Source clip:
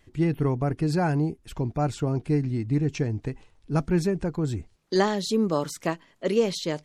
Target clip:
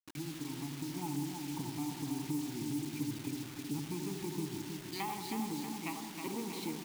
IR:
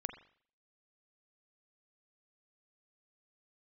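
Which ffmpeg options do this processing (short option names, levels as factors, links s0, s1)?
-filter_complex "[0:a]asettb=1/sr,asplit=3[s0][s1][s2];[s0]atrim=end=4.504[s3];[s1]atrim=start=4.5:end=6.53,asetpts=PTS-STARTPTS,afade=t=in:d=0.004:c=qsin,afade=t=out:st=2.026:d=0.004:c=qsin,acrossover=split=690[s4][s5];[s4]aeval=exprs='val(0)*(1-1/2+1/2*cos(2*PI*1*n/s))':c=same[s6];[s5]aeval=exprs='val(0)*(1-1/2-1/2*cos(2*PI*1*n/s))':c=same[s7];[s6][s7]amix=inputs=2:normalize=0[s8];[s2]atrim=start=6.526[s9];[s3][s8]acrossfade=d=0.004:c1=hsin:c2=qsin[s10];[s10][s9]acrossfade=d=0.004:c1=qsin:c2=hsin,aeval=exprs='0.299*(cos(1*acos(clip(val(0)/0.299,-1,1)))-cos(1*PI/2))+0.0299*(cos(8*acos(clip(val(0)/0.299,-1,1)))-cos(8*PI/2))':c=same,asplit=3[s11][s12][s13];[s11]bandpass=f=300:t=q:w=8,volume=1[s14];[s12]bandpass=f=870:t=q:w=8,volume=0.501[s15];[s13]bandpass=f=2240:t=q:w=8,volume=0.355[s16];[s14][s15][s16]amix=inputs=3:normalize=0,equalizer=f=140:t=o:w=1:g=12,acompressor=threshold=0.00631:ratio=8[s17];[1:a]atrim=start_sample=2205,asetrate=22932,aresample=44100[s18];[s17][s18]afir=irnorm=-1:irlink=0,dynaudnorm=f=610:g=3:m=1.5,aecho=1:1:319|638|957|1276|1595|1914|2233:0.531|0.287|0.155|0.0836|0.0451|0.0244|0.0132,acrusher=bits=8:mix=0:aa=0.000001,highshelf=f=2000:g=10.5,volume=1.12"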